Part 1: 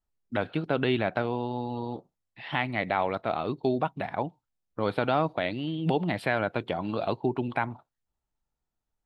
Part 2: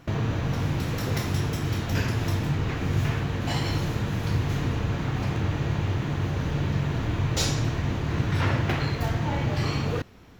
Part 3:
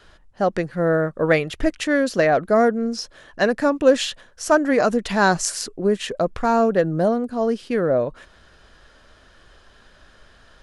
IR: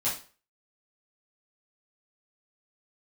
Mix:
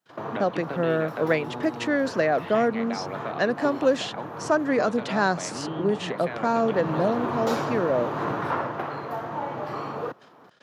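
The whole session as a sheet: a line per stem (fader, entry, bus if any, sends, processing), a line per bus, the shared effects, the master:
−4.5 dB, 0.00 s, no send, downward compressor, threshold −27 dBFS, peak gain reduction 8 dB
0:06.32 −15.5 dB → 0:06.92 −6 dB → 0:08.32 −6 dB → 0:08.82 −15 dB, 0.10 s, no send, drawn EQ curve 180 Hz 0 dB, 580 Hz +13 dB, 1,200 Hz +15 dB, 2,100 Hz −1 dB, 7,200 Hz −9 dB; parametric band 12,000 Hz +11.5 dB 0.27 octaves
−5.0 dB, 0.00 s, no send, low-pass filter 6,400 Hz 12 dB per octave; noise gate −47 dBFS, range −45 dB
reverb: not used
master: high-pass filter 140 Hz 24 dB per octave; multiband upward and downward compressor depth 40%

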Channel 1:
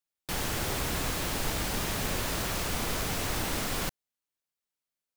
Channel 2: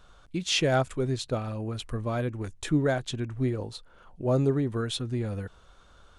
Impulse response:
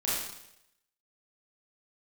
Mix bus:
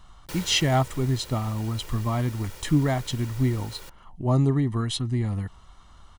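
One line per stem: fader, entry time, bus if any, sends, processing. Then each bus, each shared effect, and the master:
+1.5 dB, 0.00 s, no send, lower of the sound and its delayed copy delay 2.1 ms; automatic ducking −13 dB, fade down 0.85 s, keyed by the second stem
+2.0 dB, 0.00 s, no send, comb filter 1 ms, depth 70%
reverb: not used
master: no processing

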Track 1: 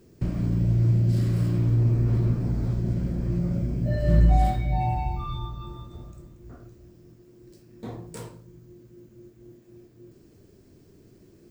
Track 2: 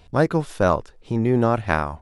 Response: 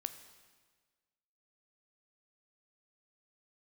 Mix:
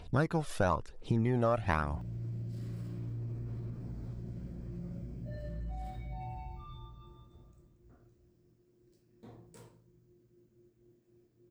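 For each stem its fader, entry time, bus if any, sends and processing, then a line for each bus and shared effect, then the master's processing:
−16.0 dB, 1.40 s, no send, brickwall limiter −17.5 dBFS, peak gain reduction 9.5 dB
−3.0 dB, 0.00 s, no send, phase shifter 1 Hz, delay 1.8 ms, feedback 49%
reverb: not used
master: downward compressor 2.5 to 1, threshold −29 dBFS, peak gain reduction 9.5 dB

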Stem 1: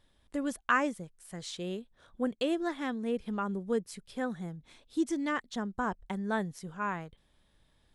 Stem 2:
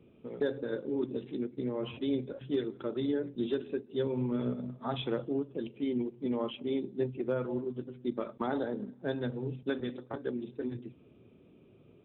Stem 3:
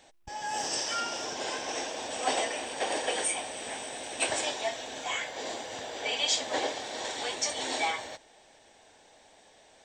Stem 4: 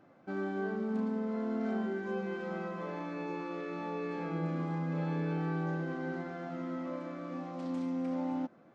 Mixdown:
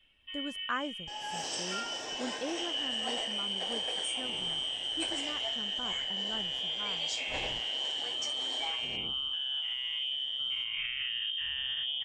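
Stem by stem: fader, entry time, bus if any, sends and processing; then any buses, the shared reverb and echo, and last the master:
−10.5 dB, 0.00 s, no bus, no send, noise gate with hold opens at −59 dBFS; high-shelf EQ 5,400 Hz −5.5 dB
−2.0 dB, 2.45 s, bus A, no send, every bin's largest magnitude spread in time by 240 ms
−9.5 dB, 0.80 s, no bus, no send, no processing
−10.5 dB, 0.00 s, bus A, no send, reverb reduction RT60 0.57 s; high-shelf EQ 2,600 Hz −7.5 dB; comb filter 2.6 ms
bus A: 0.0 dB, voice inversion scrambler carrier 3,400 Hz; brickwall limiter −27 dBFS, peak gain reduction 11 dB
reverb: not used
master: speech leveller within 4 dB 0.5 s

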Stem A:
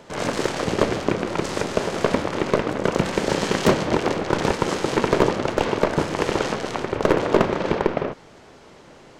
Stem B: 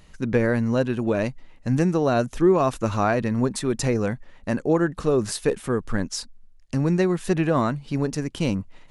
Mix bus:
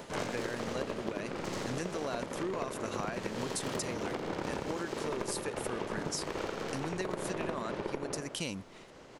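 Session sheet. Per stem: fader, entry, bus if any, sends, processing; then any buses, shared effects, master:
+1.5 dB, 0.00 s, no send, echo send −8 dB, phase distortion by the signal itself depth 0.054 ms; amplitude tremolo 4.7 Hz, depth 63%; automatic ducking −11 dB, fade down 1.20 s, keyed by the second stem
−5.0 dB, 0.00 s, no send, no echo send, spectral tilt +3 dB per octave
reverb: not used
echo: repeating echo 85 ms, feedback 41%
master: downward compressor 10 to 1, threshold −32 dBFS, peak gain reduction 14 dB

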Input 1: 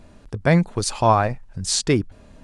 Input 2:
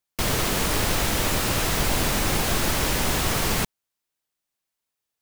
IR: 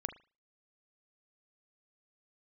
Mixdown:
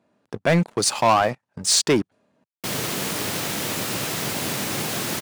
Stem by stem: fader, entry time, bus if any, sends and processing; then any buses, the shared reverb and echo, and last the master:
−5.5 dB, 0.00 s, no send, low-shelf EQ 200 Hz −10.5 dB
−12.5 dB, 2.45 s, no send, parametric band 1,000 Hz −3 dB 1.8 octaves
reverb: not used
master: high-pass filter 120 Hz 24 dB per octave; leveller curve on the samples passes 3; one half of a high-frequency compander decoder only

